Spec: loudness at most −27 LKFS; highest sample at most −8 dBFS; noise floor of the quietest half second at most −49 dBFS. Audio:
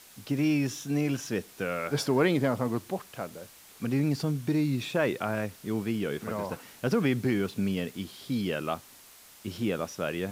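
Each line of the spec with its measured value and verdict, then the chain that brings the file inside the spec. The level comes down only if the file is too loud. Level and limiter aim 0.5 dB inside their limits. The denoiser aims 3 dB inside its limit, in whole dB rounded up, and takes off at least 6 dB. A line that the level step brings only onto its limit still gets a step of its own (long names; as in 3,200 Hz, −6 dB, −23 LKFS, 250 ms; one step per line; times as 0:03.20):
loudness −30.0 LKFS: in spec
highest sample −12.0 dBFS: in spec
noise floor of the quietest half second −53 dBFS: in spec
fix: no processing needed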